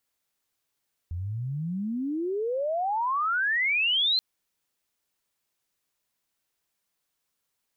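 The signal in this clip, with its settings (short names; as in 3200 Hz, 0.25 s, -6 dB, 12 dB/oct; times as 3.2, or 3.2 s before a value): chirp logarithmic 82 Hz -> 4200 Hz -29.5 dBFS -> -20.5 dBFS 3.08 s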